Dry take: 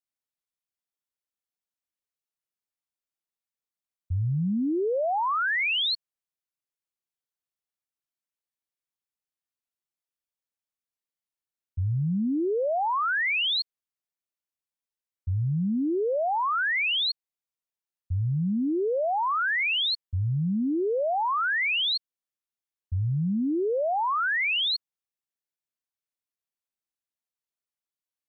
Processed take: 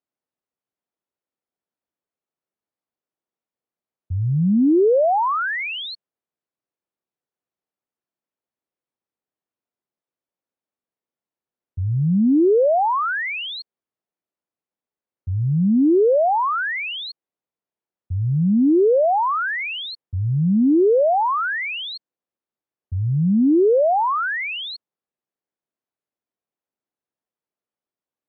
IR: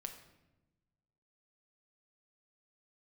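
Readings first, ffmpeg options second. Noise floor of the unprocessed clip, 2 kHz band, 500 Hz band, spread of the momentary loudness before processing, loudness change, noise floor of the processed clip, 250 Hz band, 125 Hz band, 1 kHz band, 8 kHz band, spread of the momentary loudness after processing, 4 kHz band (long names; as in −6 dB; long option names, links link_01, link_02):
below −85 dBFS, +1.0 dB, +10.5 dB, 7 LU, +6.5 dB, below −85 dBFS, +10.0 dB, +6.0 dB, +6.5 dB, can't be measured, 14 LU, −4.5 dB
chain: -af "acontrast=86,bandpass=frequency=360:width_type=q:width=0.62:csg=0,volume=4dB"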